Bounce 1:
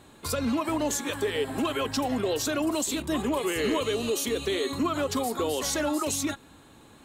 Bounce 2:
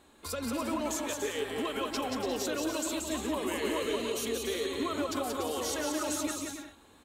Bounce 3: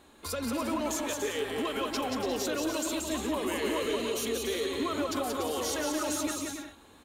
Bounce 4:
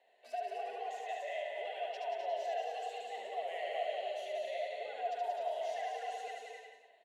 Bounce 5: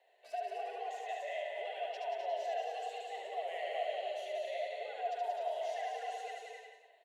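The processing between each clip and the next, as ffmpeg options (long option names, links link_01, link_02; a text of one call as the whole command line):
ffmpeg -i in.wav -af "equalizer=frequency=130:width=2.3:gain=-14.5,aecho=1:1:180|288|352.8|391.7|415:0.631|0.398|0.251|0.158|0.1,volume=-6.5dB" out.wav
ffmpeg -i in.wav -filter_complex "[0:a]bandreject=frequency=7900:width=17,asplit=2[link_01][link_02];[link_02]asoftclip=type=hard:threshold=-37dB,volume=-8dB[link_03];[link_01][link_03]amix=inputs=2:normalize=0" out.wav
ffmpeg -i in.wav -filter_complex "[0:a]asplit=3[link_01][link_02][link_03];[link_01]bandpass=frequency=530:width_type=q:width=8,volume=0dB[link_04];[link_02]bandpass=frequency=1840:width_type=q:width=8,volume=-6dB[link_05];[link_03]bandpass=frequency=2480:width_type=q:width=8,volume=-9dB[link_06];[link_04][link_05][link_06]amix=inputs=3:normalize=0,aecho=1:1:72.89|256.6:0.708|0.316,afreqshift=160" out.wav
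ffmpeg -i in.wav -af "highpass=frequency=330:width=0.5412,highpass=frequency=330:width=1.3066" out.wav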